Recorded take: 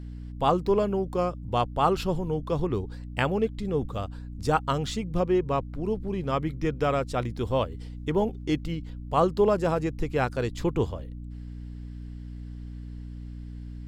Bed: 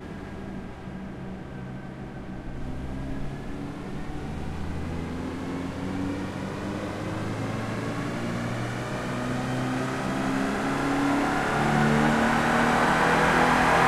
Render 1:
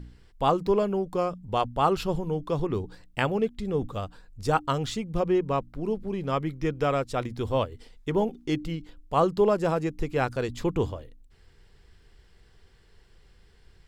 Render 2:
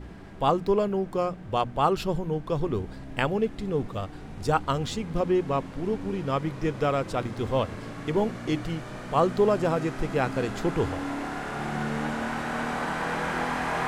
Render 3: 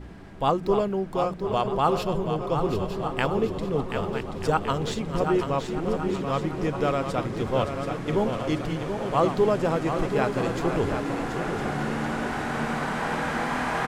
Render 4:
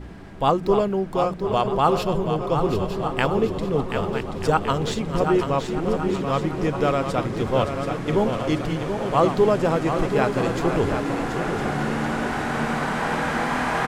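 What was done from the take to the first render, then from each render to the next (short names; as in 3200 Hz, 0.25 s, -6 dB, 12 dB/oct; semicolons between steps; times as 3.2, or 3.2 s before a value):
de-hum 60 Hz, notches 5
add bed -8 dB
regenerating reverse delay 0.616 s, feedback 55%, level -9.5 dB; feedback echo 0.731 s, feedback 53%, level -7.5 dB
gain +3.5 dB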